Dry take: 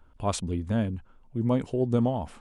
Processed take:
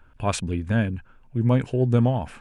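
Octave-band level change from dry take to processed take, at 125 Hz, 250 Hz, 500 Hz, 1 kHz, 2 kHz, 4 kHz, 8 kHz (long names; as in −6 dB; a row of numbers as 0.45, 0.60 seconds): +7.5 dB, +3.0 dB, +2.5 dB, +3.0 dB, +11.5 dB, +4.0 dB, can't be measured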